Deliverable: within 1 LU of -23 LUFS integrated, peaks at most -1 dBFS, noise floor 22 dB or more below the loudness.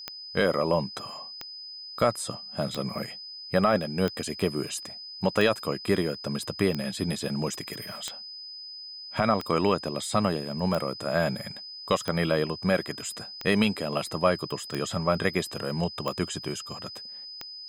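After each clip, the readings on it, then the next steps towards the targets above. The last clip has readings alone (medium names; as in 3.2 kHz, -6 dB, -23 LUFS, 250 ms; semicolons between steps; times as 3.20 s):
clicks found 14; steady tone 5 kHz; tone level -39 dBFS; loudness -29.0 LUFS; peak level -9.5 dBFS; loudness target -23.0 LUFS
-> de-click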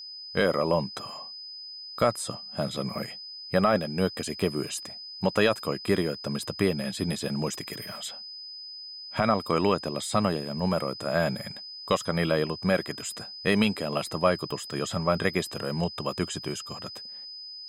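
clicks found 0; steady tone 5 kHz; tone level -39 dBFS
-> band-stop 5 kHz, Q 30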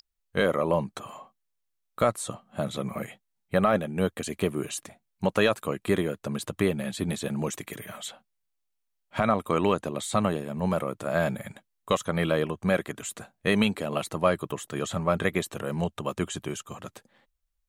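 steady tone not found; loudness -28.5 LUFS; peak level -10.0 dBFS; loudness target -23.0 LUFS
-> trim +5.5 dB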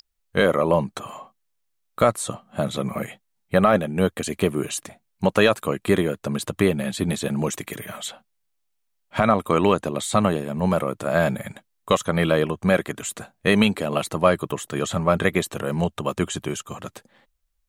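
loudness -23.0 LUFS; peak level -4.5 dBFS; noise floor -73 dBFS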